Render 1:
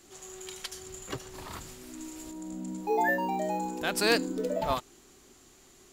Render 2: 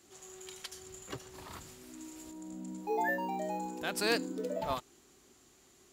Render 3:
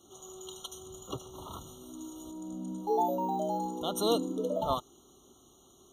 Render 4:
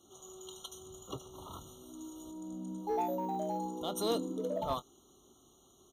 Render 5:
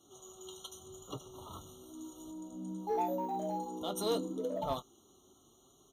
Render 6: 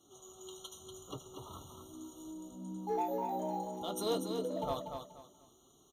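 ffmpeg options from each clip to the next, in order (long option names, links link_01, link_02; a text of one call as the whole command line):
ffmpeg -i in.wav -af "highpass=49,volume=-5.5dB" out.wav
ffmpeg -i in.wav -af "afftfilt=real='re*eq(mod(floor(b*sr/1024/1400),2),0)':imag='im*eq(mod(floor(b*sr/1024/1400),2),0)':win_size=1024:overlap=0.75,volume=4.5dB" out.wav
ffmpeg -i in.wav -filter_complex "[0:a]asplit=2[link_01][link_02];[link_02]asoftclip=type=hard:threshold=-26.5dB,volume=-5.5dB[link_03];[link_01][link_03]amix=inputs=2:normalize=0,asplit=2[link_04][link_05];[link_05]adelay=22,volume=-14dB[link_06];[link_04][link_06]amix=inputs=2:normalize=0,volume=-7.5dB" out.wav
ffmpeg -i in.wav -af "flanger=delay=6.5:depth=4.7:regen=-37:speed=0.86:shape=triangular,volume=3dB" out.wav
ffmpeg -i in.wav -af "aecho=1:1:240|480|720:0.473|0.123|0.032,volume=-1.5dB" out.wav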